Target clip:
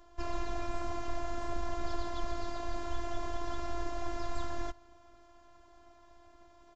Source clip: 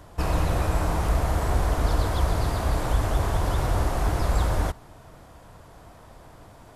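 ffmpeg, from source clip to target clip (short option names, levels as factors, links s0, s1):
-af "aresample=16000,aresample=44100,afftfilt=real='hypot(re,im)*cos(PI*b)':imag='0':win_size=512:overlap=0.75,volume=0.447"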